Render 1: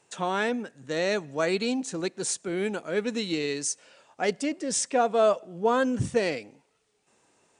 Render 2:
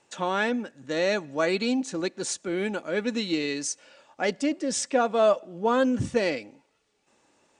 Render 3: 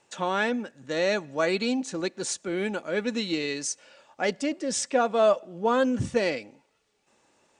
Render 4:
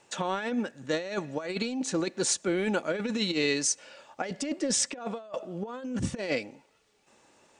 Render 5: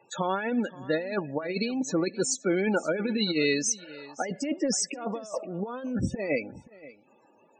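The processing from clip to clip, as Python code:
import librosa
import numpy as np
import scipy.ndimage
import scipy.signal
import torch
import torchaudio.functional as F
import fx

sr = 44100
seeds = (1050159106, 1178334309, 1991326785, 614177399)

y1 = scipy.signal.sosfilt(scipy.signal.butter(2, 7000.0, 'lowpass', fs=sr, output='sos'), x)
y1 = y1 + 0.32 * np.pad(y1, (int(3.5 * sr / 1000.0), 0))[:len(y1)]
y1 = y1 * 10.0 ** (1.0 / 20.0)
y2 = fx.peak_eq(y1, sr, hz=290.0, db=-3.5, octaves=0.33)
y3 = fx.over_compress(y2, sr, threshold_db=-29.0, ratio=-0.5)
y4 = fx.spec_topn(y3, sr, count=32)
y4 = y4 + 10.0 ** (-19.5 / 20.0) * np.pad(y4, (int(526 * sr / 1000.0), 0))[:len(y4)]
y4 = y4 * 10.0 ** (2.5 / 20.0)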